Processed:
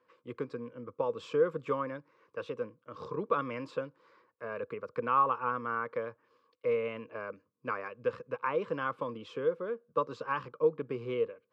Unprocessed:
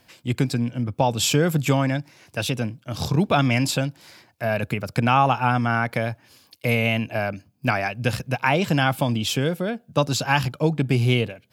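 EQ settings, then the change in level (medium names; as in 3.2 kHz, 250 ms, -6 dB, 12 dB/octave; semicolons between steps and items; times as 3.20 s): two resonant band-passes 730 Hz, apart 1.2 oct; distance through air 59 m; 0.0 dB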